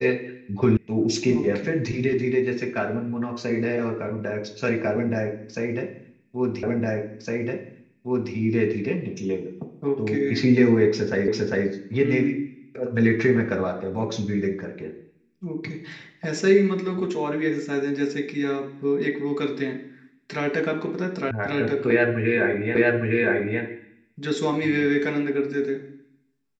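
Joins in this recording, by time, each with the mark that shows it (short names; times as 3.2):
0.77 sound cut off
6.63 repeat of the last 1.71 s
11.28 repeat of the last 0.4 s
21.31 sound cut off
22.75 repeat of the last 0.86 s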